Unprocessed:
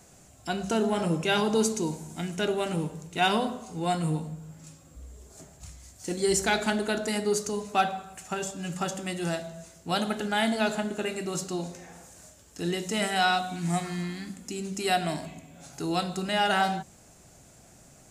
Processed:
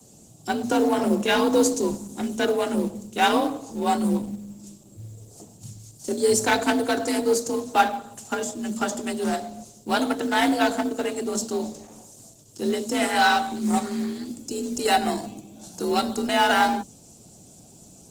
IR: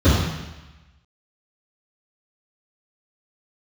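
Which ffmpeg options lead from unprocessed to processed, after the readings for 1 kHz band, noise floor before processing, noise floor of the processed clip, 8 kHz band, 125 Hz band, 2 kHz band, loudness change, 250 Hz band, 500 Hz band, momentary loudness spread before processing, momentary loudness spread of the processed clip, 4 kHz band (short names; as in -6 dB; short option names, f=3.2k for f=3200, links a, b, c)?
+5.5 dB, -55 dBFS, -50 dBFS, +4.0 dB, -4.5 dB, +4.5 dB, +5.0 dB, +6.0 dB, +5.0 dB, 19 LU, 19 LU, +2.5 dB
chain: -filter_complex "[0:a]acrossover=split=100|510|2800[a][b][c][d];[c]adynamicsmooth=sensitivity=6:basefreq=710[e];[a][b][e][d]amix=inputs=4:normalize=0,afreqshift=46,acrusher=bits=6:mode=log:mix=0:aa=0.000001,volume=5.5dB" -ar 48000 -c:a libopus -b:a 16k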